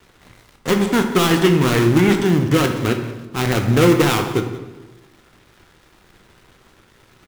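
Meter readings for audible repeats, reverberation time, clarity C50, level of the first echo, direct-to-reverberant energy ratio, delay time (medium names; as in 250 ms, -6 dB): 1, 1.2 s, 7.0 dB, -18.0 dB, 4.5 dB, 179 ms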